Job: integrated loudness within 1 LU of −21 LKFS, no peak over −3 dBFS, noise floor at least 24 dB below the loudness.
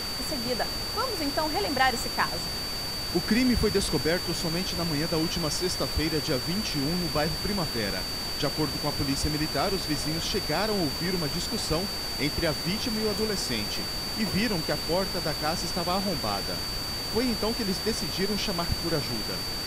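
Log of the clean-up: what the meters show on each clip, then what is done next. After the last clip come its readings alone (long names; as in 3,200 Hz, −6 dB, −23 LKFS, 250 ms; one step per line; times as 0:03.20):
interfering tone 4,600 Hz; level of the tone −32 dBFS; background noise floor −33 dBFS; target noise floor −52 dBFS; integrated loudness −27.5 LKFS; sample peak −8.5 dBFS; target loudness −21.0 LKFS
→ notch filter 4,600 Hz, Q 30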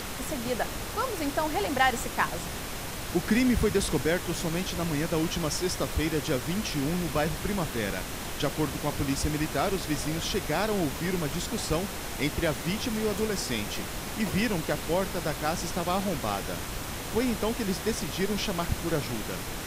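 interfering tone none found; background noise floor −36 dBFS; target noise floor −53 dBFS
→ noise reduction from a noise print 17 dB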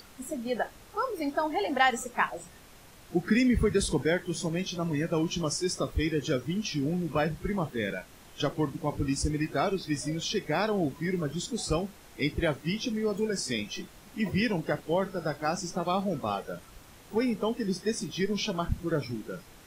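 background noise floor −53 dBFS; target noise floor −54 dBFS
→ noise reduction from a noise print 6 dB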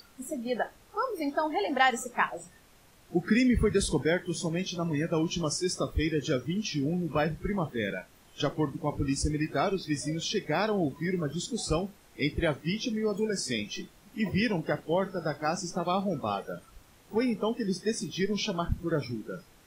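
background noise floor −58 dBFS; integrated loudness −30.0 LKFS; sample peak −9.5 dBFS; target loudness −21.0 LKFS
→ level +9 dB
brickwall limiter −3 dBFS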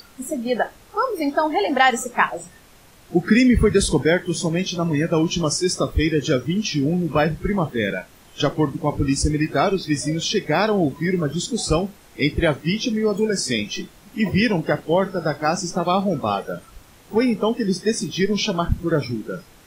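integrated loudness −21.5 LKFS; sample peak −3.0 dBFS; background noise floor −49 dBFS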